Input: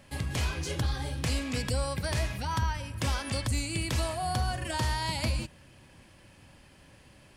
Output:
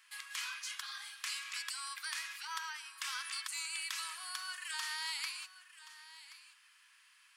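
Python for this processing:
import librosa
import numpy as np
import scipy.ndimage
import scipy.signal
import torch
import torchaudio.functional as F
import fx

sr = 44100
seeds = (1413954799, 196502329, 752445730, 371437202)

y = scipy.signal.sosfilt(scipy.signal.butter(8, 1100.0, 'highpass', fs=sr, output='sos'), x)
y = y + 10.0 ** (-15.5 / 20.0) * np.pad(y, (int(1077 * sr / 1000.0), 0))[:len(y)]
y = F.gain(torch.from_numpy(y), -3.5).numpy()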